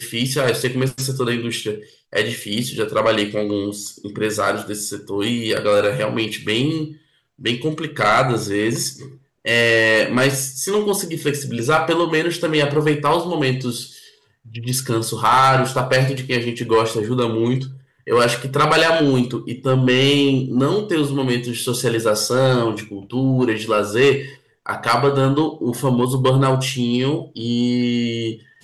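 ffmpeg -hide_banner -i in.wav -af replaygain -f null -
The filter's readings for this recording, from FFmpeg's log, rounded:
track_gain = -1.4 dB
track_peak = 0.299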